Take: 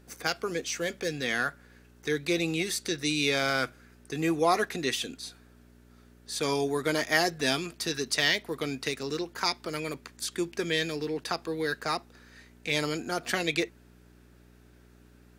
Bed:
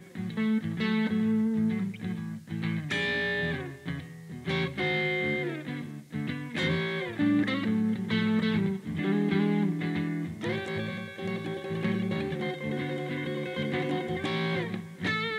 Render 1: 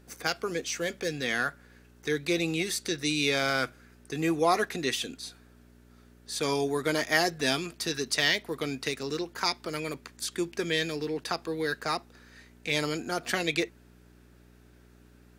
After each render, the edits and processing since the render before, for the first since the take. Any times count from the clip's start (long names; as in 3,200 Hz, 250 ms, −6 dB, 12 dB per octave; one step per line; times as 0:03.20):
no processing that can be heard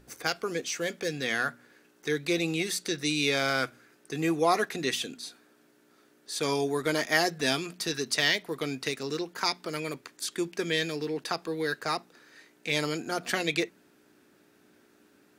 hum removal 60 Hz, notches 4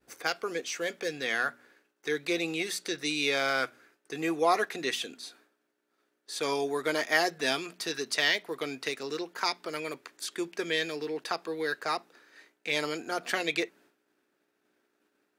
downward expander −53 dBFS
bass and treble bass −12 dB, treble −4 dB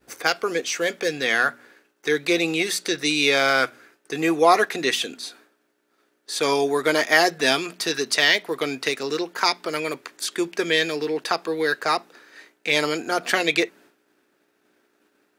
level +9 dB
brickwall limiter −3 dBFS, peak gain reduction 2 dB